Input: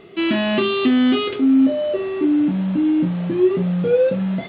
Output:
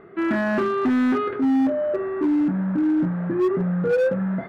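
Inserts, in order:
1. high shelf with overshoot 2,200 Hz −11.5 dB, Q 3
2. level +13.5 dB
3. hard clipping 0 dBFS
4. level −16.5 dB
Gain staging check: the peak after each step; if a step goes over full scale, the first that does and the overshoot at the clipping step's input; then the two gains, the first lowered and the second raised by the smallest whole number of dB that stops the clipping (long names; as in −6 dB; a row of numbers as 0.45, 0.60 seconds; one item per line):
−7.0, +6.5, 0.0, −16.5 dBFS
step 2, 6.5 dB
step 2 +6.5 dB, step 4 −9.5 dB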